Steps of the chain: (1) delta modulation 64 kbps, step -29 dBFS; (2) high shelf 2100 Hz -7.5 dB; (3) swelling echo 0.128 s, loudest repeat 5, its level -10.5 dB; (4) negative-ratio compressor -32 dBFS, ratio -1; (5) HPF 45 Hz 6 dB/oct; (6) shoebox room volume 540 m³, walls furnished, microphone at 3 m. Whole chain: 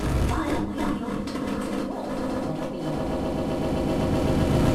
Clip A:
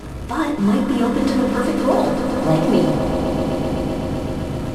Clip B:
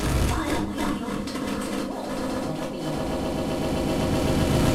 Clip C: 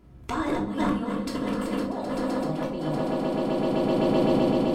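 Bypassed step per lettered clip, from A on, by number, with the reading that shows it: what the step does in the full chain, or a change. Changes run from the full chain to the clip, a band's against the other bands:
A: 4, 125 Hz band -3.5 dB; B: 2, 8 kHz band +6.5 dB; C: 1, 125 Hz band -6.5 dB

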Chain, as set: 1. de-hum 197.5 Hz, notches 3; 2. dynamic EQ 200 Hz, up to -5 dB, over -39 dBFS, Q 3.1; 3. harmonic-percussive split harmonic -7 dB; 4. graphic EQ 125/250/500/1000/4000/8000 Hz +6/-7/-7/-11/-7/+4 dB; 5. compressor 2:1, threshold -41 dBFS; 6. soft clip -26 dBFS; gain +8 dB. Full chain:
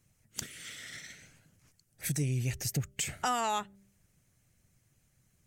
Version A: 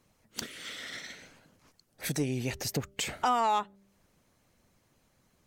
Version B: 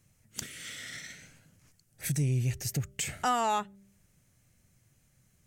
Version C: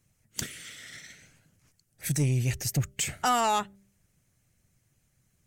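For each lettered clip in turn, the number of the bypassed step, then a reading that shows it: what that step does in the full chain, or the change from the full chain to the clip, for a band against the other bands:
4, crest factor change -2.0 dB; 3, 8 kHz band -2.5 dB; 5, mean gain reduction 4.0 dB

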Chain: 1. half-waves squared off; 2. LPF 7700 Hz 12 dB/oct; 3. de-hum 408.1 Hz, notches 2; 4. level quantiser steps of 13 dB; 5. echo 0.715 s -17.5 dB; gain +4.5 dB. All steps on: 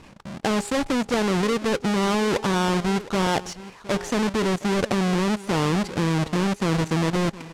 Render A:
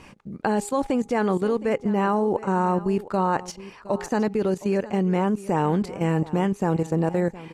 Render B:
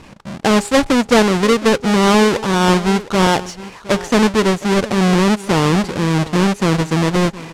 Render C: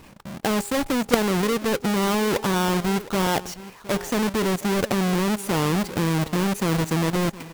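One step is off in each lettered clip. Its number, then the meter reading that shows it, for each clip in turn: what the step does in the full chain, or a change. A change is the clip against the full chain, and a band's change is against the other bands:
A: 1, distortion -4 dB; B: 4, momentary loudness spread change +2 LU; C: 2, 8 kHz band +3.0 dB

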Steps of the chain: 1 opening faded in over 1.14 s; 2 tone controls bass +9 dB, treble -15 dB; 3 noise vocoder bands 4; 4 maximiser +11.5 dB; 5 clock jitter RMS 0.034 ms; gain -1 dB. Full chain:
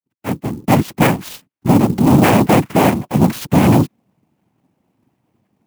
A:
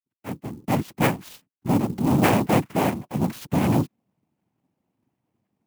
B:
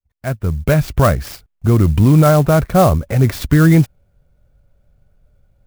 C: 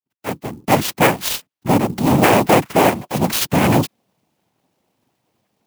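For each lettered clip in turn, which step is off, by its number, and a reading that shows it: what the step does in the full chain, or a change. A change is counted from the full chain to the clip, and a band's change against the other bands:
4, crest factor change +5.0 dB; 3, 125 Hz band +6.0 dB; 2, 125 Hz band -7.0 dB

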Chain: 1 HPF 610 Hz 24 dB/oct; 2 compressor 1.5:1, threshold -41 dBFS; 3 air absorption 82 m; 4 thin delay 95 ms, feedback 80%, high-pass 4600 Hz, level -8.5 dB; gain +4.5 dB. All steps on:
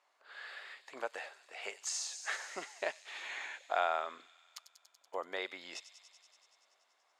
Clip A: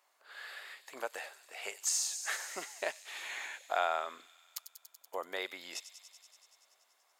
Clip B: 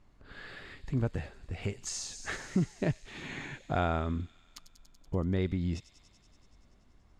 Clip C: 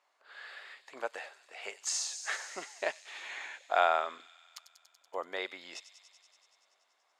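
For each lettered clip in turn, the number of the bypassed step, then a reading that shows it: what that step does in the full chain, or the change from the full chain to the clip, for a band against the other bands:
3, 8 kHz band +6.5 dB; 1, crest factor change -5.0 dB; 2, momentary loudness spread change +2 LU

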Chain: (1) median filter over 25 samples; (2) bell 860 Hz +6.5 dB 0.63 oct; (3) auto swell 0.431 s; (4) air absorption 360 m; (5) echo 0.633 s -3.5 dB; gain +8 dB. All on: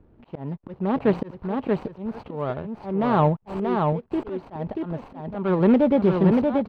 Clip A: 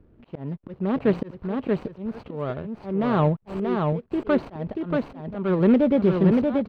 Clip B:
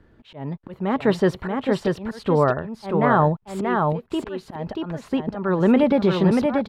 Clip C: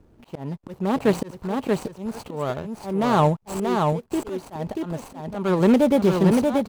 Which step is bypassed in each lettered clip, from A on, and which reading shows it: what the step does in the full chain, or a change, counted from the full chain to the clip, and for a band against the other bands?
2, 1 kHz band -4.5 dB; 1, 4 kHz band +6.5 dB; 4, 4 kHz band +7.5 dB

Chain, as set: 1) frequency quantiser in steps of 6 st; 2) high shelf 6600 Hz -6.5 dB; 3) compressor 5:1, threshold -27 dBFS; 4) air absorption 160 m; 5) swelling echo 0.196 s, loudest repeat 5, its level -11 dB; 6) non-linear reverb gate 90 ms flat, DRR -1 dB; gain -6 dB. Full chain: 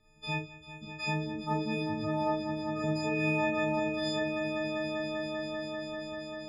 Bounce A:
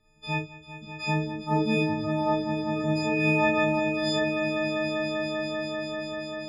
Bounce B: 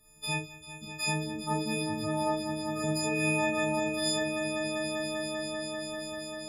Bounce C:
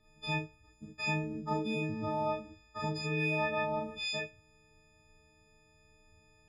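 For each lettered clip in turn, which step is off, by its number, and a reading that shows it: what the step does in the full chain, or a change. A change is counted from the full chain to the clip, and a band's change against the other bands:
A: 3, mean gain reduction 4.0 dB; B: 4, 8 kHz band +16.0 dB; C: 5, momentary loudness spread change +3 LU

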